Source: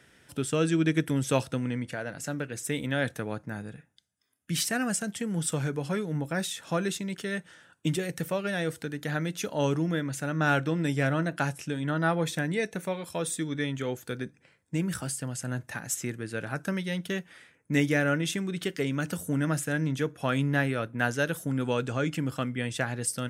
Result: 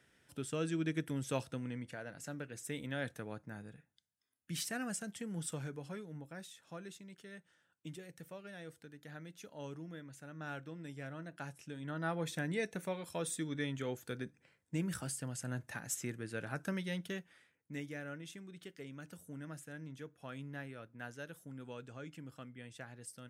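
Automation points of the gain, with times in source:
5.42 s -11 dB
6.5 s -19.5 dB
11.13 s -19.5 dB
12.51 s -7.5 dB
16.94 s -7.5 dB
17.84 s -19.5 dB

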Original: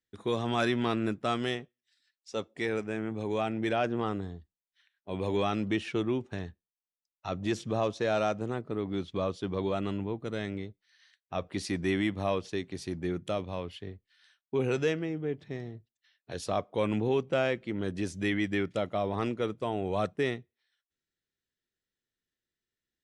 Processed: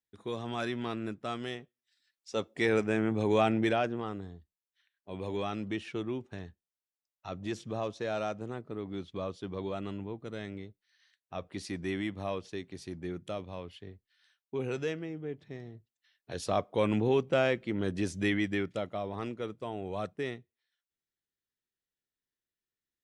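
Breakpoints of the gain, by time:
1.5 s -6.5 dB
2.78 s +5 dB
3.54 s +5 dB
4.02 s -5.5 dB
15.63 s -5.5 dB
16.55 s +1 dB
18.23 s +1 dB
19.07 s -6 dB

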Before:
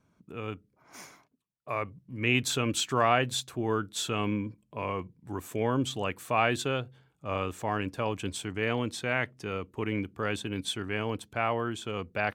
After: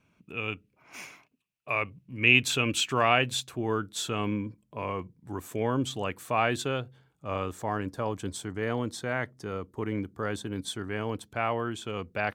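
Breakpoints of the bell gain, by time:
bell 2600 Hz 0.51 oct
1.73 s +15 dB
2.39 s +8.5 dB
3.13 s +8.5 dB
3.78 s -2 dB
7.27 s -2 dB
7.82 s -12 dB
10.69 s -12 dB
11.44 s -1 dB

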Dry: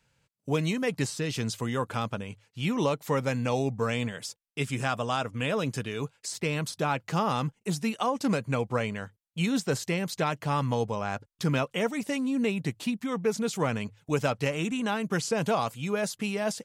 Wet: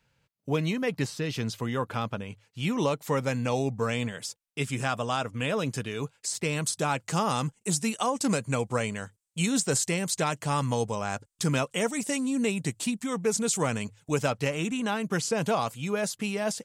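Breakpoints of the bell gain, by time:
bell 8100 Hz 0.9 oct
2.13 s -6 dB
2.6 s +3 dB
6.14 s +3 dB
6.78 s +14 dB
13.77 s +14 dB
14.39 s +3.5 dB

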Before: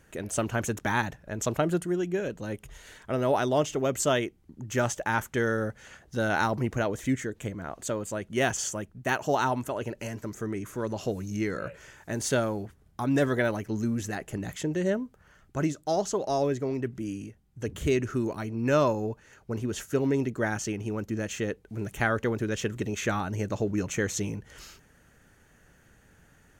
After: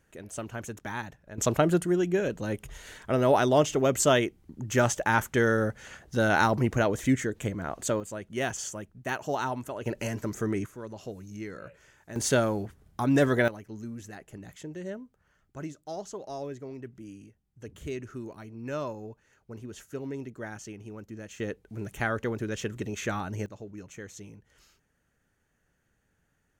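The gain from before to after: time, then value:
-8.5 dB
from 1.38 s +3 dB
from 8 s -4.5 dB
from 9.86 s +3.5 dB
from 10.66 s -9 dB
from 12.16 s +2 dB
from 13.48 s -10.5 dB
from 21.4 s -3 dB
from 23.46 s -14.5 dB

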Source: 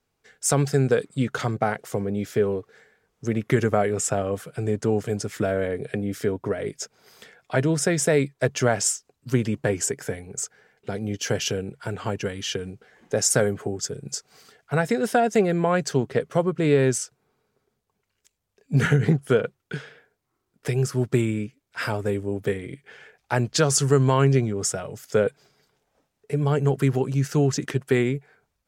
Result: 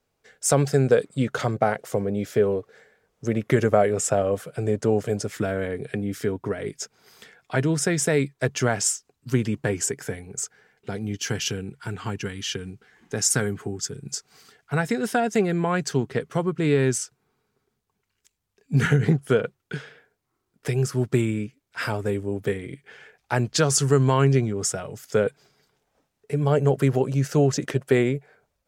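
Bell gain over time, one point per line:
bell 570 Hz 0.54 oct
+5.5 dB
from 5.36 s -5 dB
from 11.02 s -14.5 dB
from 14.1 s -7.5 dB
from 18.89 s -1.5 dB
from 26.47 s +8 dB

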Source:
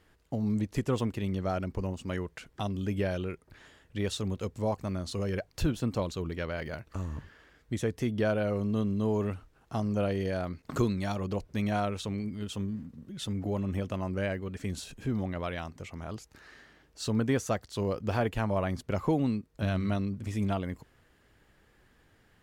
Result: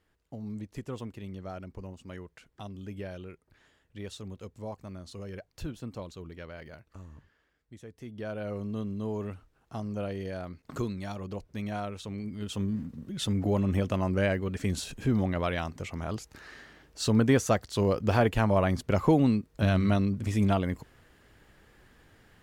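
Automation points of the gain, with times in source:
6.64 s -9 dB
7.83 s -17 dB
8.51 s -5 dB
12.02 s -5 dB
12.79 s +5 dB

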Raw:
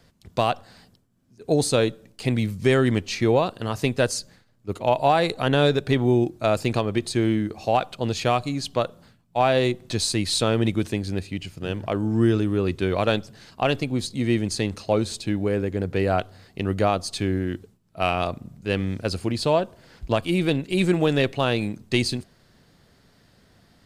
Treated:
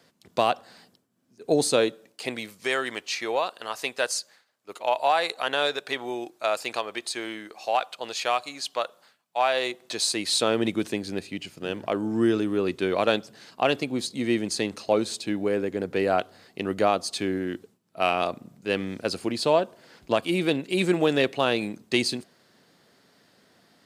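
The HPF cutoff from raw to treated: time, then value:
1.67 s 240 Hz
2.71 s 720 Hz
9.52 s 720 Hz
10.63 s 240 Hz

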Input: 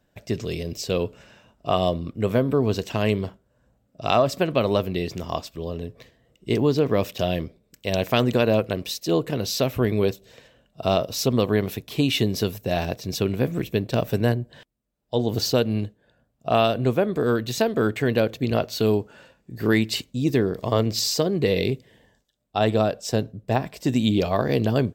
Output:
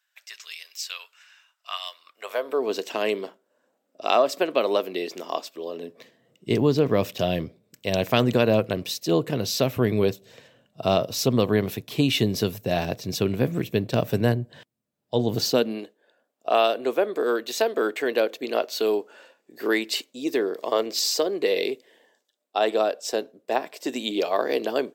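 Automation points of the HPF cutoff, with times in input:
HPF 24 dB/oct
1.94 s 1300 Hz
2.72 s 300 Hz
5.7 s 300 Hz
6.56 s 95 Hz
15.29 s 95 Hz
15.85 s 330 Hz

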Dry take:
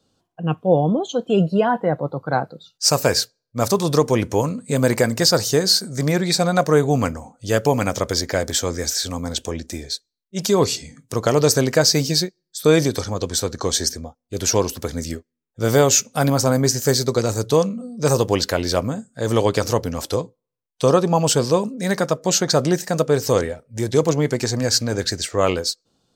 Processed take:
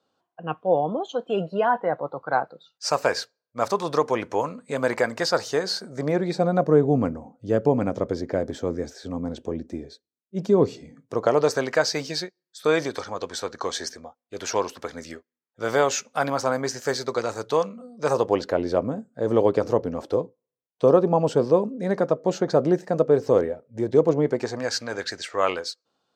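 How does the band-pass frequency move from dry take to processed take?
band-pass, Q 0.76
5.59 s 1100 Hz
6.64 s 300 Hz
10.67 s 300 Hz
11.67 s 1200 Hz
17.98 s 1200 Hz
18.57 s 430 Hz
24.22 s 430 Hz
24.73 s 1300 Hz

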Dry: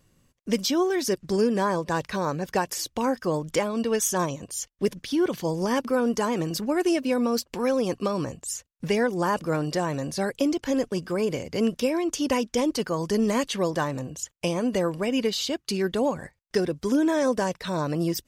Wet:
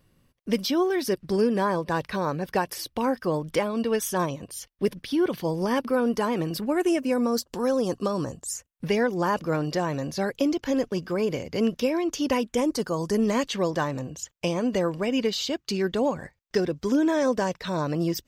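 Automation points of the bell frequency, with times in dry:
bell -12 dB 0.46 oct
6.53 s 7000 Hz
7.47 s 2300 Hz
8.4 s 2300 Hz
8.95 s 8800 Hz
12.3 s 8800 Hz
13 s 1600 Hz
13.3 s 10000 Hz

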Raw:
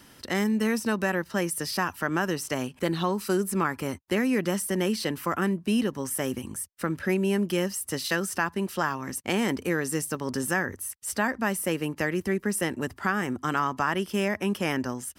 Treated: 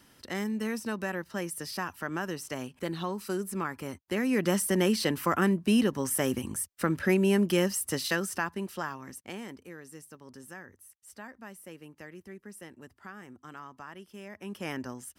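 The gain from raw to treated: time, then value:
4.02 s -7 dB
4.52 s +1 dB
7.77 s +1 dB
9.08 s -10 dB
9.66 s -19 dB
14.24 s -19 dB
14.68 s -8 dB

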